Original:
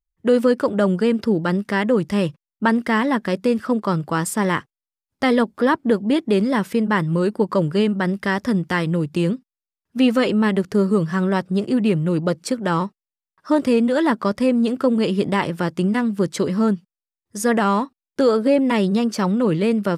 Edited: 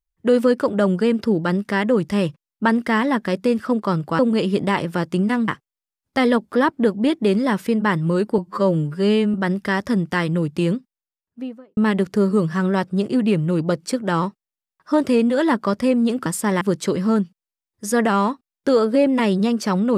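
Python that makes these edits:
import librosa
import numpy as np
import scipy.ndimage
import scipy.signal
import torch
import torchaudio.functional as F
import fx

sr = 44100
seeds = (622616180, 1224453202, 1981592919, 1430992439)

y = fx.studio_fade_out(x, sr, start_s=9.31, length_s=1.04)
y = fx.edit(y, sr, fx.swap(start_s=4.19, length_s=0.35, other_s=14.84, other_length_s=1.29),
    fx.stretch_span(start_s=7.44, length_s=0.48, factor=2.0), tone=tone)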